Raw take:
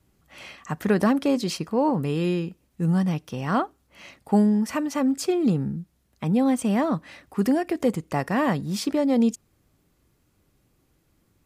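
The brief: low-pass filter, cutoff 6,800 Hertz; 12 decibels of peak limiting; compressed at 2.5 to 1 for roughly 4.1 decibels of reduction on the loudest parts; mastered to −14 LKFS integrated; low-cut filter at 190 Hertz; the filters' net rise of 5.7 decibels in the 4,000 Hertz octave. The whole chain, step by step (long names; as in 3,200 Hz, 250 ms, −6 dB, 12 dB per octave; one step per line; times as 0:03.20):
high-pass filter 190 Hz
low-pass filter 6,800 Hz
parametric band 4,000 Hz +8 dB
downward compressor 2.5 to 1, threshold −23 dBFS
level +19 dB
brickwall limiter −5 dBFS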